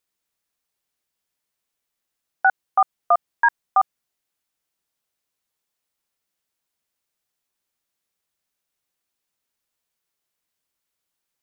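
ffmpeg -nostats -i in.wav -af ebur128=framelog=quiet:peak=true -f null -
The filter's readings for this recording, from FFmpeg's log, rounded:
Integrated loudness:
  I:         -21.7 LUFS
  Threshold: -31.7 LUFS
Loudness range:
  LRA:         7.2 LU
  Threshold: -45.2 LUFS
  LRA low:   -31.1 LUFS
  LRA high:  -23.9 LUFS
True peak:
  Peak:       -7.6 dBFS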